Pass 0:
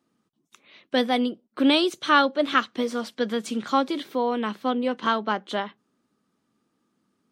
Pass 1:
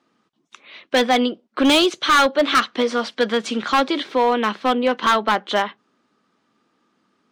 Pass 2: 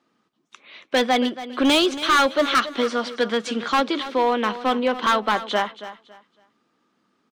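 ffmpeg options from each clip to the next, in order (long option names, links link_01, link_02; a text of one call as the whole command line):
ffmpeg -i in.wav -filter_complex "[0:a]asplit=2[link_01][link_02];[link_02]highpass=frequency=720:poles=1,volume=12dB,asoftclip=type=tanh:threshold=-5.5dB[link_03];[link_01][link_03]amix=inputs=2:normalize=0,lowpass=frequency=4100:poles=1,volume=-6dB,lowpass=6800,volume=15.5dB,asoftclip=hard,volume=-15.5dB,volume=4.5dB" out.wav
ffmpeg -i in.wav -af "aecho=1:1:278|556|834:0.2|0.0499|0.0125,volume=-2.5dB" out.wav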